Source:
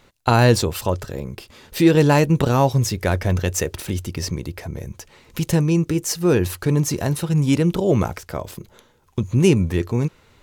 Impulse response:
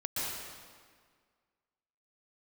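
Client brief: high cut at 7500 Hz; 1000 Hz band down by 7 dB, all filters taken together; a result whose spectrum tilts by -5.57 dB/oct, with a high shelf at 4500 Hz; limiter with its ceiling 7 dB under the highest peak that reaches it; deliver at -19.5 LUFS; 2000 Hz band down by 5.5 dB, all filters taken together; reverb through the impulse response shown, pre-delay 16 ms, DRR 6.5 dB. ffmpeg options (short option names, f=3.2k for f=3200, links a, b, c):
-filter_complex "[0:a]lowpass=7.5k,equalizer=f=1k:t=o:g=-8.5,equalizer=f=2k:t=o:g=-6.5,highshelf=f=4.5k:g=8,alimiter=limit=-9.5dB:level=0:latency=1,asplit=2[a][b];[1:a]atrim=start_sample=2205,adelay=16[c];[b][c]afir=irnorm=-1:irlink=0,volume=-12dB[d];[a][d]amix=inputs=2:normalize=0,volume=1.5dB"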